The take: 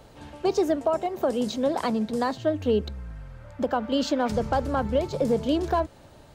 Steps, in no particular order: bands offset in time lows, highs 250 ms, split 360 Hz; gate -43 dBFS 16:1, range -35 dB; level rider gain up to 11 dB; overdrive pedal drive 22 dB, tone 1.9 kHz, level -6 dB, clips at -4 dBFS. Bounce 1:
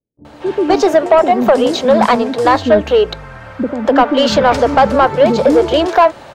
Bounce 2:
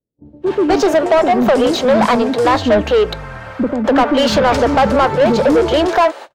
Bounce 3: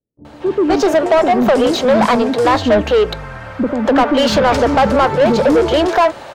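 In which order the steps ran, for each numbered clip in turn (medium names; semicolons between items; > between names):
bands offset in time > overdrive pedal > level rider > gate; gate > bands offset in time > level rider > overdrive pedal; level rider > bands offset in time > overdrive pedal > gate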